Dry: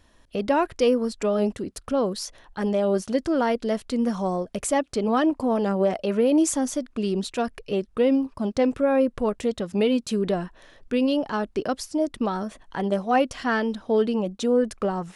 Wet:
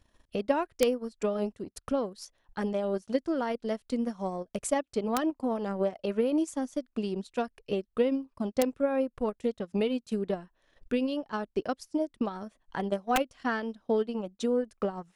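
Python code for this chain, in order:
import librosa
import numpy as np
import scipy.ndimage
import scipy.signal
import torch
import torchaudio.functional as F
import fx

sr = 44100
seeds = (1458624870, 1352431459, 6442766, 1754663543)

y = (np.mod(10.0 ** (10.0 / 20.0) * x + 1.0, 2.0) - 1.0) / 10.0 ** (10.0 / 20.0)
y = fx.transient(y, sr, attack_db=6, sustain_db=-12)
y = y * 10.0 ** (-8.5 / 20.0)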